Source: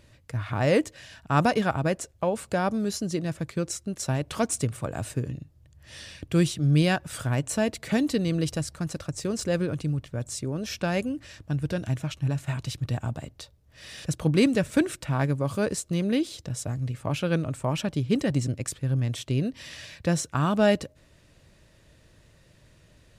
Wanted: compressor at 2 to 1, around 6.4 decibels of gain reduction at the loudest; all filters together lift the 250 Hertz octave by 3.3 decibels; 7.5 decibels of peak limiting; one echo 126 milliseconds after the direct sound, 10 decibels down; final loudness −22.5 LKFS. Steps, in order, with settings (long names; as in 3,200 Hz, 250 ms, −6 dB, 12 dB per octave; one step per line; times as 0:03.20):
parametric band 250 Hz +4.5 dB
downward compressor 2 to 1, threshold −25 dBFS
brickwall limiter −19 dBFS
single-tap delay 126 ms −10 dB
level +7.5 dB